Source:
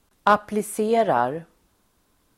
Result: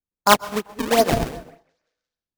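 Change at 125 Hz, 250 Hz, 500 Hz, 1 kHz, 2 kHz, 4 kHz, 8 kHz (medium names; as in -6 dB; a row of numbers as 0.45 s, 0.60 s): +5.5 dB, +2.0 dB, +0.5 dB, +0.5 dB, +3.5 dB, +13.0 dB, +9.0 dB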